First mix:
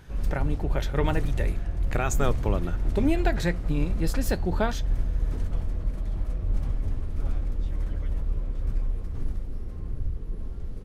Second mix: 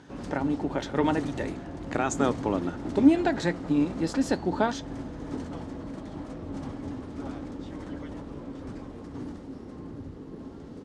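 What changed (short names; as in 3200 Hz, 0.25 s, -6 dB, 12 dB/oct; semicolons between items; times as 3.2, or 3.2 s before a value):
background +3.5 dB; master: add speaker cabinet 190–8200 Hz, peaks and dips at 280 Hz +10 dB, 880 Hz +5 dB, 2400 Hz -4 dB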